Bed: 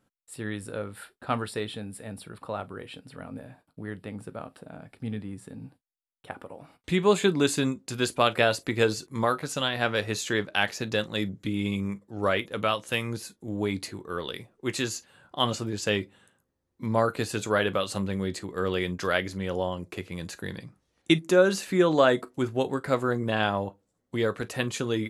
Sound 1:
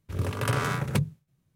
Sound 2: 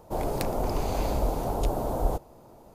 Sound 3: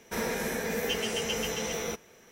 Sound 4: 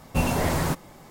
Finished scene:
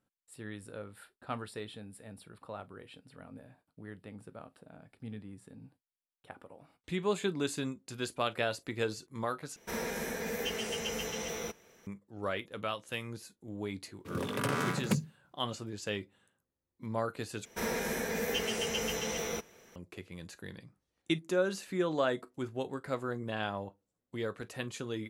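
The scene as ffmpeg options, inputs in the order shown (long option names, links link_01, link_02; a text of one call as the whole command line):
ffmpeg -i bed.wav -i cue0.wav -i cue1.wav -i cue2.wav -filter_complex "[3:a]asplit=2[link_01][link_02];[0:a]volume=-10dB[link_03];[1:a]highpass=frequency=210:width_type=q:width=2[link_04];[link_03]asplit=3[link_05][link_06][link_07];[link_05]atrim=end=9.564[link_08];[link_01]atrim=end=2.31,asetpts=PTS-STARTPTS,volume=-5dB[link_09];[link_06]atrim=start=11.866:end=17.454[link_10];[link_02]atrim=end=2.31,asetpts=PTS-STARTPTS,volume=-2.5dB[link_11];[link_07]atrim=start=19.756[link_12];[link_04]atrim=end=1.55,asetpts=PTS-STARTPTS,volume=-4.5dB,afade=type=in:duration=0.004:curve=hsin,afade=type=out:start_time=1.546:duration=0.004:curve=hsin,adelay=615636S[link_13];[link_08][link_09]acrossfade=duration=0.004:curve1=hsin:curve2=hsin[link_14];[link_14][link_10]acrossfade=duration=0.004:curve1=hsin:curve2=hsin[link_15];[link_15][link_11]acrossfade=duration=0.004:curve1=hsin:curve2=hsin[link_16];[link_16][link_12]acrossfade=duration=0.004:curve1=hsin:curve2=hsin[link_17];[link_17][link_13]amix=inputs=2:normalize=0" out.wav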